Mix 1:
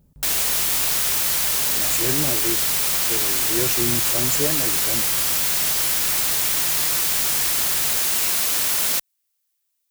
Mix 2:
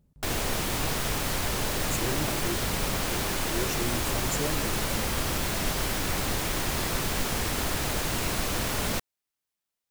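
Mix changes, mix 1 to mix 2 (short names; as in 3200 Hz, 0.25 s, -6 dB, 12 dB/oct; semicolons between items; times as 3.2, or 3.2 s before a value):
speech -7.5 dB; background: add tilt -4 dB/oct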